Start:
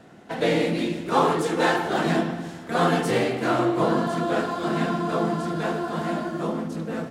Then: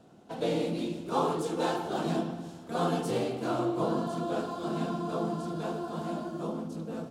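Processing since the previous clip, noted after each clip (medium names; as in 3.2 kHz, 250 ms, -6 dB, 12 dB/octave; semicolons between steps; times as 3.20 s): peaking EQ 1.9 kHz -13.5 dB 0.66 oct; trim -7 dB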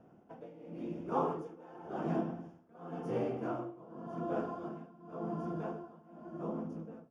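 tremolo 0.91 Hz, depth 92%; boxcar filter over 11 samples; trim -3 dB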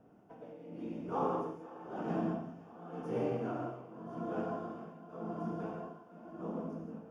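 thinning echo 511 ms, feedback 76%, high-pass 370 Hz, level -19 dB; gated-style reverb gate 210 ms flat, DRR 0 dB; trim -3 dB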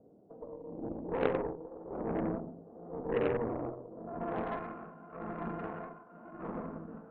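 low-pass sweep 510 Hz -> 1.4 kHz, 3.88–4.67 s; Chebyshev shaper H 3 -9 dB, 5 -19 dB, 8 -25 dB, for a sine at -17.5 dBFS; trim +4.5 dB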